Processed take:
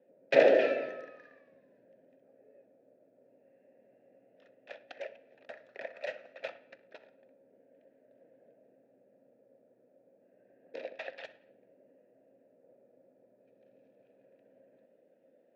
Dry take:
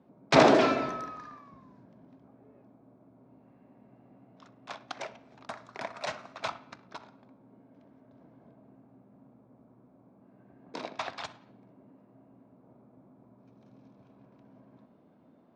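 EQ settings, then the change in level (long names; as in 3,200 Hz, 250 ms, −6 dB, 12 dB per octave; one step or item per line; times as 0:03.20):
formant filter e
+7.5 dB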